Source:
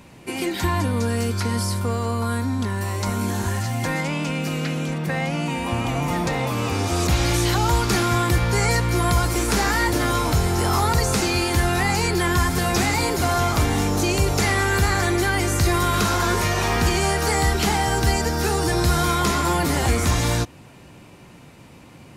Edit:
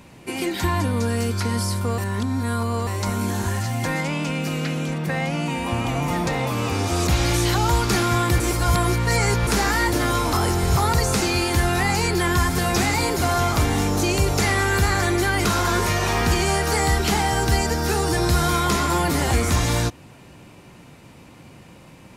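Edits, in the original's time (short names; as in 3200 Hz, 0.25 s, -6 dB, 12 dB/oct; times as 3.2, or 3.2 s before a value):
1.98–2.87 reverse
8.4–9.47 reverse
10.33–10.77 reverse
15.45–16 cut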